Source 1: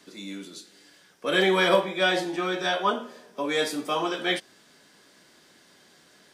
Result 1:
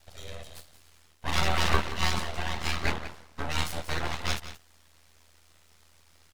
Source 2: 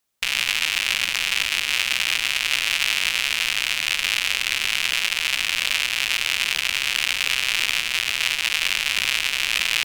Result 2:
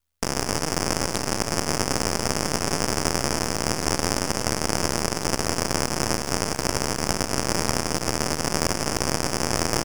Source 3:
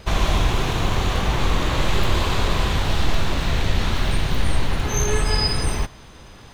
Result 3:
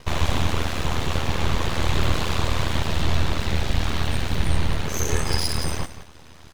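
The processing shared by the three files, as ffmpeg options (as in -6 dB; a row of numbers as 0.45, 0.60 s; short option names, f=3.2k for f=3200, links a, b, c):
-af "aeval=exprs='val(0)*sin(2*PI*40*n/s)':c=same,aecho=1:1:177:0.224,aeval=exprs='abs(val(0))':c=same,volume=1dB"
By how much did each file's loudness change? -5.0, -4.0, -2.5 LU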